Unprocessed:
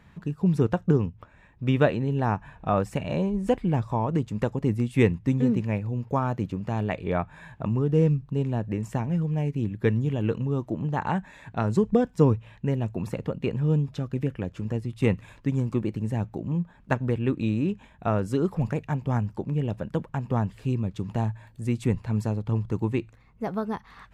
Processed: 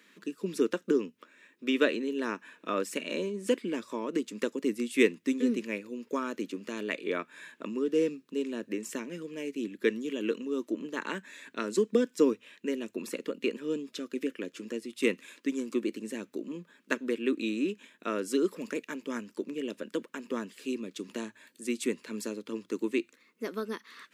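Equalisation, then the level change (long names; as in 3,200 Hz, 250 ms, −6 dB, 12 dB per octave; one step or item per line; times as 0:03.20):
high-pass filter 250 Hz 24 dB per octave
high-shelf EQ 2,500 Hz +8.5 dB
phaser with its sweep stopped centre 320 Hz, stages 4
0.0 dB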